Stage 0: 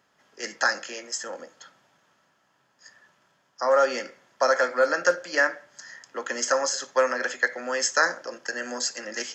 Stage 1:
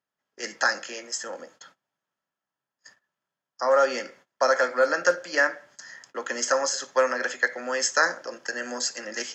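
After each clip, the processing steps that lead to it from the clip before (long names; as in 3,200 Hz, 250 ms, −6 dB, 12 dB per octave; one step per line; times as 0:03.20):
noise gate −52 dBFS, range −22 dB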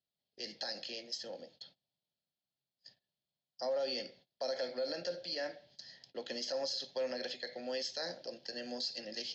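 drawn EQ curve 140 Hz 0 dB, 300 Hz −9 dB, 730 Hz −8 dB, 1,200 Hz −30 dB, 4,300 Hz +6 dB, 7,300 Hz −26 dB
brickwall limiter −28.5 dBFS, peak gain reduction 9.5 dB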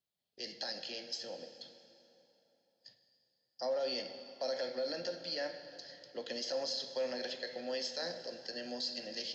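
dense smooth reverb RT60 3.4 s, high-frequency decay 0.75×, DRR 8.5 dB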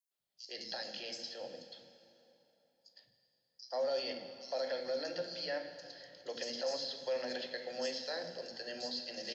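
three-band delay without the direct sound highs, mids, lows 110/190 ms, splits 300/5,100 Hz
level +1 dB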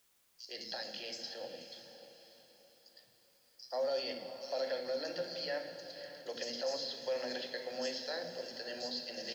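bit-depth reduction 12 bits, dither triangular
feedback delay with all-pass diffusion 578 ms, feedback 40%, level −12 dB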